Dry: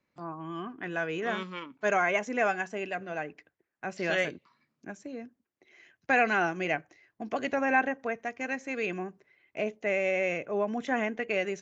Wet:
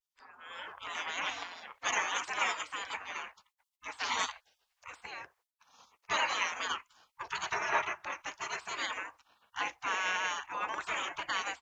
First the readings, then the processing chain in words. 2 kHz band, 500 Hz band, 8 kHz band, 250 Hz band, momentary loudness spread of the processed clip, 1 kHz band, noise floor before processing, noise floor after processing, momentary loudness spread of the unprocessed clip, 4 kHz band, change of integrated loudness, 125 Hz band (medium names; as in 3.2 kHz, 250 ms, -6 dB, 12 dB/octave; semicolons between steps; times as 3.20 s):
-4.0 dB, -15.5 dB, no reading, -20.0 dB, 15 LU, -3.0 dB, -84 dBFS, under -85 dBFS, 16 LU, +7.0 dB, -4.5 dB, -17.5 dB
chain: spectral gate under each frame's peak -25 dB weak; graphic EQ 125/1000/2000 Hz -8/+10/+4 dB; level rider gain up to 10 dB; vibrato 0.48 Hz 48 cents